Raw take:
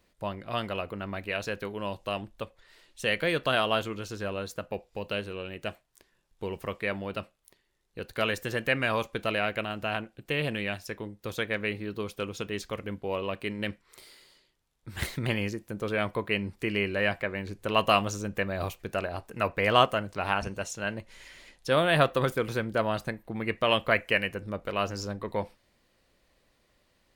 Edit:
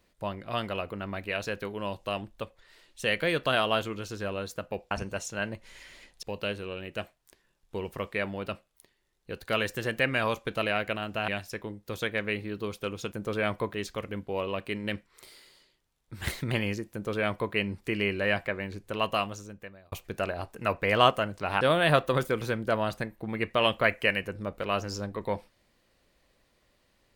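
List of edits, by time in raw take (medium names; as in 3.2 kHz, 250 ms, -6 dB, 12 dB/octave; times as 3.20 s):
9.96–10.64 s: delete
15.67–16.28 s: copy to 12.48 s
17.24–18.67 s: fade out
20.36–21.68 s: move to 4.91 s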